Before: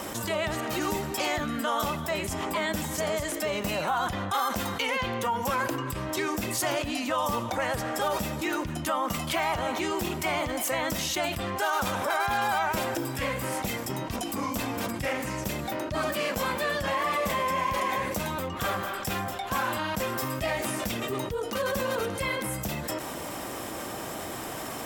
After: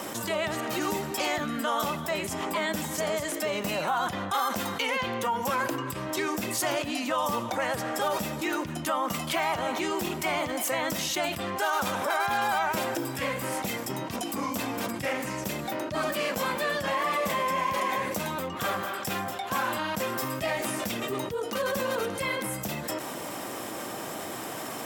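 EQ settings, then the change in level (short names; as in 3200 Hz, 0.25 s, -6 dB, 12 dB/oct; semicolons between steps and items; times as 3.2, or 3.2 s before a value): HPF 130 Hz 12 dB/oct; 0.0 dB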